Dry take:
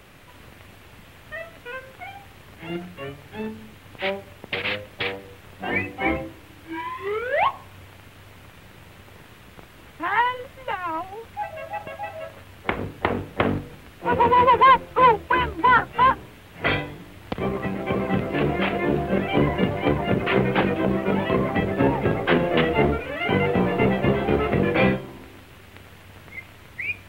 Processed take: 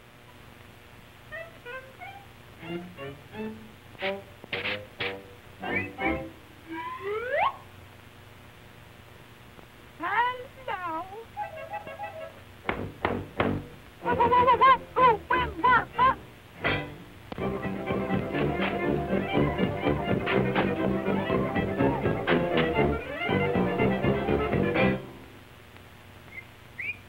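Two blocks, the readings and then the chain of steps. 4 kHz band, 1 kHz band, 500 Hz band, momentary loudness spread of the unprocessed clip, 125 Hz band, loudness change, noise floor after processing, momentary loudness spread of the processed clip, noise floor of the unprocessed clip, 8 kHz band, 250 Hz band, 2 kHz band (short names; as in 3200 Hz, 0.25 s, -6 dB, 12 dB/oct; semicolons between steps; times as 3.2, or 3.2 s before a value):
-4.5 dB, -4.5 dB, -4.5 dB, 19 LU, -4.5 dB, -4.5 dB, -51 dBFS, 19 LU, -48 dBFS, n/a, -4.5 dB, -4.5 dB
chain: buzz 120 Hz, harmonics 30, -51 dBFS -3 dB/oct; ending taper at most 390 dB/s; gain -4.5 dB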